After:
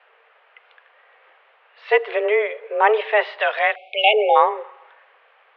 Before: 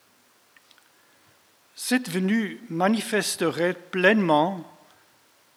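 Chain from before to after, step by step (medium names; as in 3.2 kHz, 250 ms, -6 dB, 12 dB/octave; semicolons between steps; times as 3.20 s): 3.40–4.13 s: tilt EQ +4 dB/octave; 3.76–4.36 s: spectral selection erased 640–1900 Hz; mistuned SSB +210 Hz 220–2700 Hz; trim +7 dB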